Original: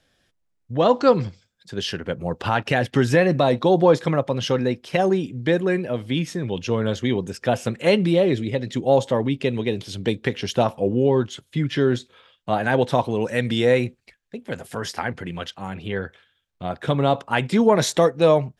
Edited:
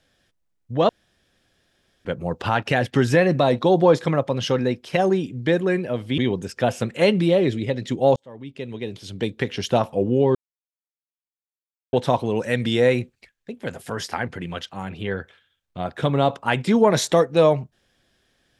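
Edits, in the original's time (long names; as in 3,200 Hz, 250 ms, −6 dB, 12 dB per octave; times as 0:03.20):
0:00.89–0:02.05: fill with room tone
0:06.18–0:07.03: remove
0:09.01–0:10.47: fade in linear
0:11.20–0:12.78: silence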